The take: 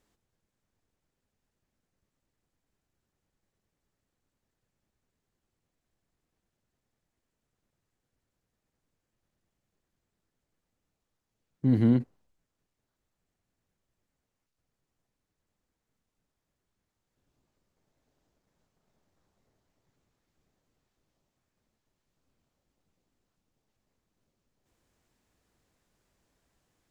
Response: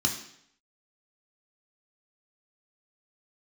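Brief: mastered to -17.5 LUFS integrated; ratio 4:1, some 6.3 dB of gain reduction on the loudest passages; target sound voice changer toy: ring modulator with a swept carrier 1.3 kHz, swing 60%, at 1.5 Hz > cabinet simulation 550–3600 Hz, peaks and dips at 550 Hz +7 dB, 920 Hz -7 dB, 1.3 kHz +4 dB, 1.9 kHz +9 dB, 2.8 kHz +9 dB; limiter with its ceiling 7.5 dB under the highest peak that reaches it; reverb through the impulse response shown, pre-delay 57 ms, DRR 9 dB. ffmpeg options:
-filter_complex "[0:a]acompressor=threshold=0.0562:ratio=4,alimiter=level_in=1.26:limit=0.0631:level=0:latency=1,volume=0.794,asplit=2[s0][s1];[1:a]atrim=start_sample=2205,adelay=57[s2];[s1][s2]afir=irnorm=-1:irlink=0,volume=0.141[s3];[s0][s3]amix=inputs=2:normalize=0,aeval=exprs='val(0)*sin(2*PI*1300*n/s+1300*0.6/1.5*sin(2*PI*1.5*n/s))':c=same,highpass=550,equalizer=f=550:t=q:w=4:g=7,equalizer=f=920:t=q:w=4:g=-7,equalizer=f=1300:t=q:w=4:g=4,equalizer=f=1900:t=q:w=4:g=9,equalizer=f=2800:t=q:w=4:g=9,lowpass=f=3600:w=0.5412,lowpass=f=3600:w=1.3066,volume=5.62"

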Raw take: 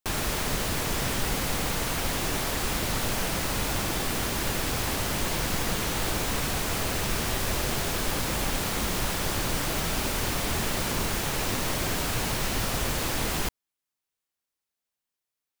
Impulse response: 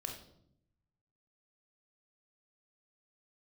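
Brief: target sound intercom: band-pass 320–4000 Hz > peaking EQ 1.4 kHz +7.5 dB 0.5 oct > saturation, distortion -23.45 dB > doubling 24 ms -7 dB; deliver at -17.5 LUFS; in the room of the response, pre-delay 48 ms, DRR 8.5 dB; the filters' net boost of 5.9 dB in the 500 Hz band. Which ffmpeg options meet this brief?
-filter_complex "[0:a]equalizer=f=500:t=o:g=8,asplit=2[s0][s1];[1:a]atrim=start_sample=2205,adelay=48[s2];[s1][s2]afir=irnorm=-1:irlink=0,volume=0.422[s3];[s0][s3]amix=inputs=2:normalize=0,highpass=320,lowpass=4000,equalizer=f=1400:t=o:w=0.5:g=7.5,asoftclip=threshold=0.126,asplit=2[s4][s5];[s5]adelay=24,volume=0.447[s6];[s4][s6]amix=inputs=2:normalize=0,volume=2.99"

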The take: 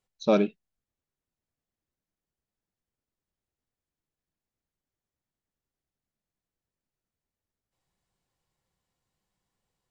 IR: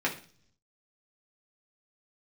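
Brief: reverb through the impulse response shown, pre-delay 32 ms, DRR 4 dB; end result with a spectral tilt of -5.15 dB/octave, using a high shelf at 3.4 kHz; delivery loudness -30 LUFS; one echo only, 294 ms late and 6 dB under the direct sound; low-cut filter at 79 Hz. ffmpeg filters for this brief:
-filter_complex "[0:a]highpass=79,highshelf=f=3400:g=6,aecho=1:1:294:0.501,asplit=2[s0][s1];[1:a]atrim=start_sample=2205,adelay=32[s2];[s1][s2]afir=irnorm=-1:irlink=0,volume=0.211[s3];[s0][s3]amix=inputs=2:normalize=0,volume=0.596"

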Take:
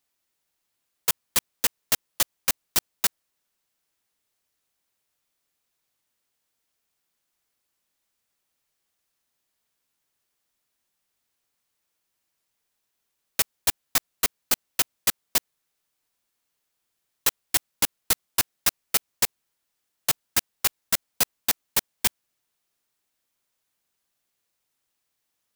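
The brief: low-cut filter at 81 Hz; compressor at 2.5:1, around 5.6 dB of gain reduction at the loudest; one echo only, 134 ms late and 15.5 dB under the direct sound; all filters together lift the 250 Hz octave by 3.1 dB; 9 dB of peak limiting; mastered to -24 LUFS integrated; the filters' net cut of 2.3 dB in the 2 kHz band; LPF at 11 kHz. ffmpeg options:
-af "highpass=81,lowpass=11000,equalizer=f=250:t=o:g=4,equalizer=f=2000:t=o:g=-3,acompressor=threshold=0.0355:ratio=2.5,alimiter=limit=0.0944:level=0:latency=1,aecho=1:1:134:0.168,volume=5.31"

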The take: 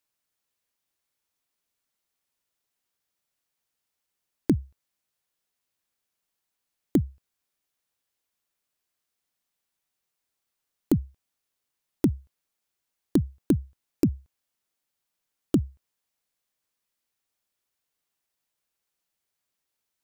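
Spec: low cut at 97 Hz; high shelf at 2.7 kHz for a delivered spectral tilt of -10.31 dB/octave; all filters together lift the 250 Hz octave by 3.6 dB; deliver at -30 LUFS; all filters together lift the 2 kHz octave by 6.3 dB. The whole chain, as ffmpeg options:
-af "highpass=97,equalizer=f=250:t=o:g=4.5,equalizer=f=2000:t=o:g=5,highshelf=f=2700:g=7,volume=0.562"

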